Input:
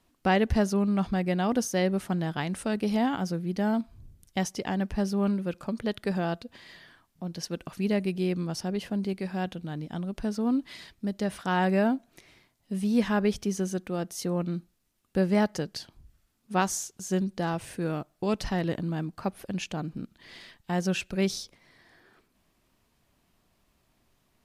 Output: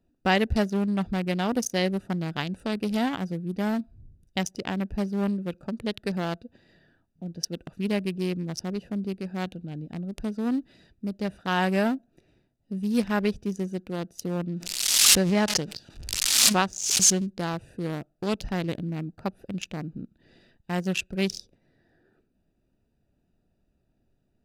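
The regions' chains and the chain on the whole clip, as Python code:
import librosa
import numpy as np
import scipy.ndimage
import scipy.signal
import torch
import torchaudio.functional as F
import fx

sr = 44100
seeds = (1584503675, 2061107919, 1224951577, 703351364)

y = fx.chain(x, sr, fx.crossing_spikes(level_db=-29.0),
    fx.lowpass(hz=4700.0, slope=12),
    fx.pre_swell(db_per_s=30.0), at=(14.56, 17.27))
y = fx.wiener(y, sr, points=41)
y = fx.high_shelf(y, sr, hz=2300.0, db=11.5)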